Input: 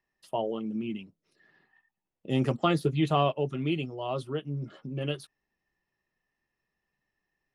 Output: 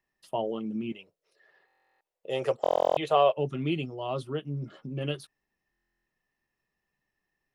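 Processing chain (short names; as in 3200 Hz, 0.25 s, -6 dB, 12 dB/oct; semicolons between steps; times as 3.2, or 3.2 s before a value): 0.92–3.37 resonant low shelf 350 Hz -12 dB, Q 3; stuck buffer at 1.66/2.62/5.71, samples 1024, times 14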